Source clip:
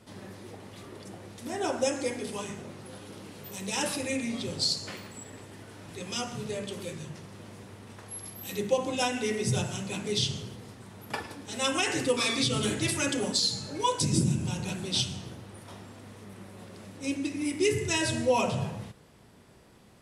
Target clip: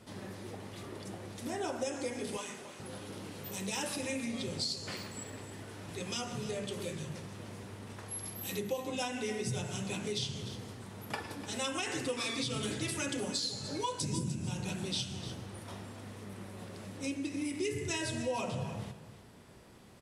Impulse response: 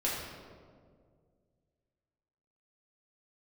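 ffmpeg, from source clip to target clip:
-filter_complex "[0:a]asettb=1/sr,asplit=3[link_01][link_02][link_03];[link_01]atrim=end=2.374[link_04];[link_02]atrim=start=2.37:end=2.8,asetpts=PTS-STARTPTS,afade=type=in:duration=0.004:curve=qsin,afade=type=out:start_time=0.426:duration=0.004:curve=qsin,highpass=frequency=760:poles=1[link_05];[link_03]atrim=start=2.796[link_06];[link_04][link_05]acrossfade=duration=0.004:curve1=hsin:curve2=qsin[link_07];[link_07][link_06]acrossfade=duration=0.004:curve1=qsin:curve2=hsin,acompressor=threshold=-35dB:ratio=3,aecho=1:1:299:0.224"

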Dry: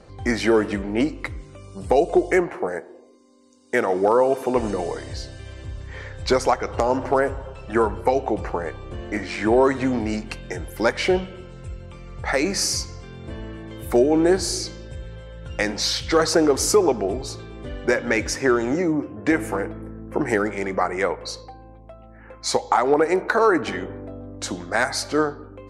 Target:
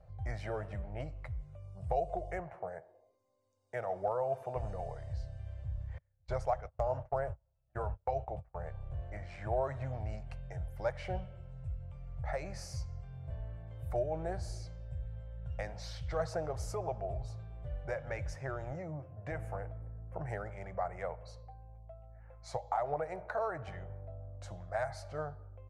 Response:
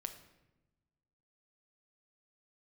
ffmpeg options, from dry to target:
-filter_complex "[0:a]asettb=1/sr,asplit=3[link_01][link_02][link_03];[link_01]atrim=end=5.984[link_04];[link_02]atrim=start=5.98:end=8.58,asetpts=PTS-STARTPTS,afade=type=in:duration=0.004:curve=qsin,afade=type=out:start_time=2.596:duration=0.004:curve=qsin,agate=range=-34dB:threshold=-24dB:ratio=16:detection=peak[link_05];[link_03]atrim=start=8.576[link_06];[link_04][link_05]acrossfade=duration=0.004:curve1=hsin:curve2=qsin[link_07];[link_07][link_06]acrossfade=duration=0.004:curve1=qsin:curve2=hsin,firequalizer=gain_entry='entry(140,0);entry(240,-29);entry(390,-22);entry(630,-3);entry(960,-14);entry(4100,-22)':delay=0.05:min_phase=1,volume=-5dB"

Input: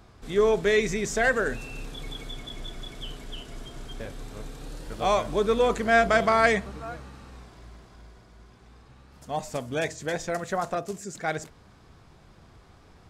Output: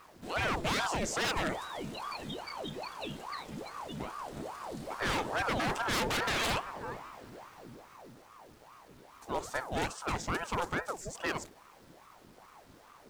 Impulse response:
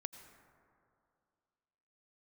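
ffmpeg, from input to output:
-af "acrusher=bits=9:mix=0:aa=0.000001,aeval=exprs='0.0794*(abs(mod(val(0)/0.0794+3,4)-2)-1)':channel_layout=same,aeval=exprs='val(0)*sin(2*PI*680*n/s+680*0.75/2.4*sin(2*PI*2.4*n/s))':channel_layout=same,volume=-1dB"

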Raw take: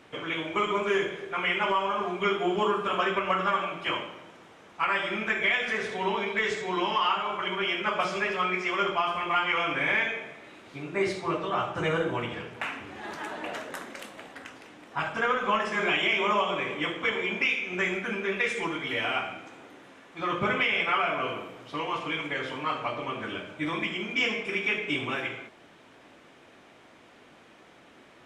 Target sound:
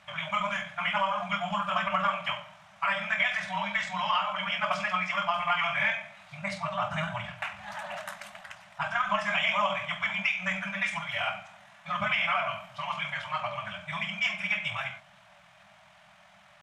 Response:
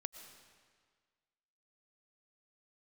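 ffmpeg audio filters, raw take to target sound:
-af "atempo=1.7,bandreject=frequency=47.28:width_type=h:width=4,bandreject=frequency=94.56:width_type=h:width=4,bandreject=frequency=141.84:width_type=h:width=4,afftfilt=real='re*(1-between(b*sr/4096,210,560))':imag='im*(1-between(b*sr/4096,210,560))':win_size=4096:overlap=0.75"

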